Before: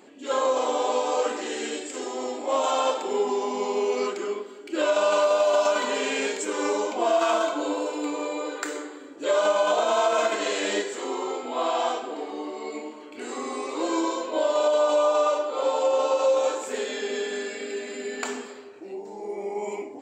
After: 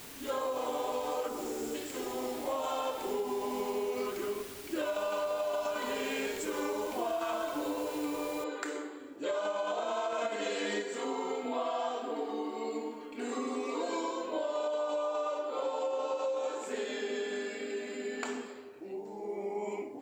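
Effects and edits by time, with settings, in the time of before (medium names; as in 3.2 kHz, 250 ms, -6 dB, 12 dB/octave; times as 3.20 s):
1.28–1.75 s: time-frequency box 1.5–5 kHz -22 dB
8.44 s: noise floor step -40 dB -69 dB
10.21–14.11 s: comb 4.3 ms, depth 94%
whole clip: tone controls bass +6 dB, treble -4 dB; compression, threshold -25 dBFS; trim -5.5 dB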